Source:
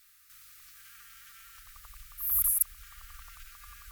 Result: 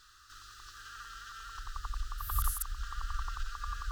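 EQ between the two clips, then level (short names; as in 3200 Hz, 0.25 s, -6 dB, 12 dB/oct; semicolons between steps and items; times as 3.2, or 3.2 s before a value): air absorption 160 m; fixed phaser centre 600 Hz, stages 6; +16.0 dB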